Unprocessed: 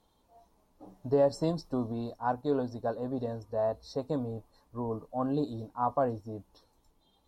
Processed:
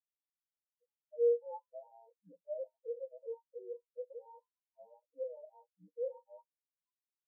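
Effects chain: band inversion scrambler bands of 1000 Hz; in parallel at -3 dB: limiter -24.5 dBFS, peak gain reduction 8.5 dB; on the sum: high shelf 2400 Hz -8 dB; fixed phaser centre 510 Hz, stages 8; comb 6.1 ms, depth 91%; reverb, pre-delay 40 ms, DRR 12 dB; reverse; compressor 6:1, threshold -39 dBFS, peak gain reduction 22.5 dB; reverse; hard clip -37.5 dBFS, distortion -15 dB; HPF 230 Hz 6 dB/oct; spectral expander 4:1; gain +13 dB

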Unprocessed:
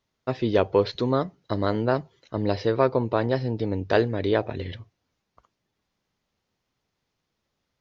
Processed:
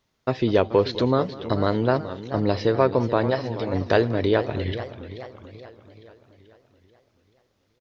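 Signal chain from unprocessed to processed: 3.3–3.74 resonant low shelf 500 Hz -7.5 dB, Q 1.5; in parallel at +1 dB: compressor, threshold -27 dBFS, peak gain reduction 12.5 dB; on the sum: echo 0.201 s -19.5 dB; warbling echo 0.432 s, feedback 53%, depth 172 cents, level -13 dB; gain -1 dB

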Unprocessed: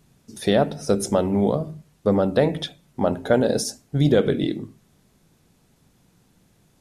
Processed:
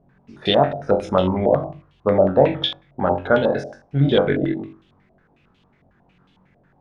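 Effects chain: flutter echo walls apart 3.7 m, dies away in 0.33 s; stepped low-pass 11 Hz 660–3200 Hz; gain -1.5 dB

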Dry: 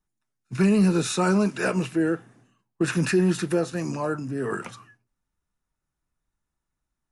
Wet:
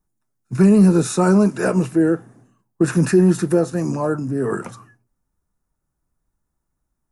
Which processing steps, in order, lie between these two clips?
bell 3000 Hz -13 dB 1.8 oct; gain +7.5 dB

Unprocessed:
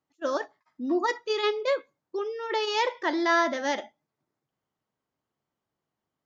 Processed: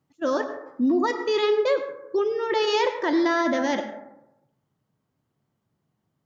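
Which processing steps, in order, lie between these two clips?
bell 130 Hz +13.5 dB 2.1 oct; in parallel at +3 dB: vocal rider 2 s; on the sum: limiter -11 dBFS, peak gain reduction 7 dB; plate-style reverb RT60 0.88 s, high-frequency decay 0.3×, pre-delay 80 ms, DRR 9 dB; gain -4.5 dB

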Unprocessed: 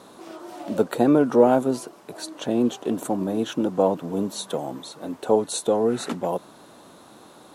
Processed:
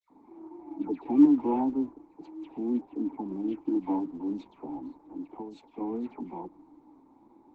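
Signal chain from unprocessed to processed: Wiener smoothing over 15 samples; LPF 4900 Hz 12 dB/oct; 4.93–5.71 compressor 20:1, threshold -23 dBFS, peak gain reduction 11 dB; vowel filter u; dispersion lows, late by 0.105 s, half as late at 1600 Hz; flange 0.34 Hz, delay 3.9 ms, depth 4.6 ms, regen -35%; gain +6 dB; Opus 12 kbps 48000 Hz

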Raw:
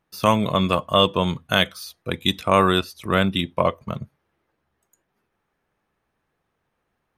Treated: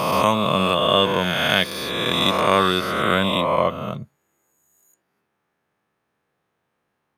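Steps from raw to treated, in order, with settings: spectral swells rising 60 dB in 2.12 s; HPF 110 Hz 12 dB/oct; gain -2.5 dB

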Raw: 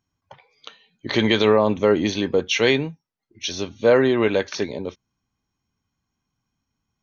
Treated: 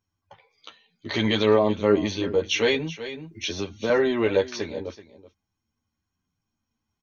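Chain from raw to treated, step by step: chorus voices 4, 0.54 Hz, delay 11 ms, depth 2 ms; echo 0.379 s -16.5 dB; 2.74–3.9 three-band squash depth 70%; gain -1 dB

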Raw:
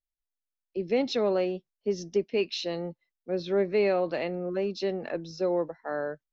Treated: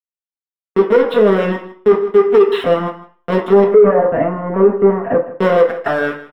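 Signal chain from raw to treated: 0.96–1.48 bell 880 Hz -5.5 dB 2.4 oct; sample gate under -31 dBFS; LPC vocoder at 8 kHz pitch kept; reverb removal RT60 1.3 s; sample leveller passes 3; 3.64–5.22 Gaussian blur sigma 5.2 samples; echo 0.158 s -16.5 dB; reverb RT60 0.45 s, pre-delay 3 ms, DRR 0 dB; maximiser +1.5 dB; gain -1 dB

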